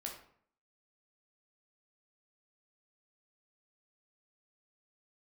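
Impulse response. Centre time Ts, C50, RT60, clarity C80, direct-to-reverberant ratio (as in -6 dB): 27 ms, 6.0 dB, 0.60 s, 10.0 dB, -0.5 dB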